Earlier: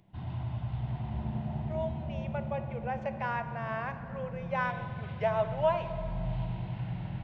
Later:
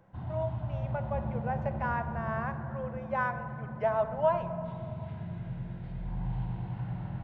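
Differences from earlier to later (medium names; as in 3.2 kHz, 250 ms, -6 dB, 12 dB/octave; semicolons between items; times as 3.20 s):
speech: entry -1.40 s; master: add resonant high shelf 1.9 kHz -6.5 dB, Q 1.5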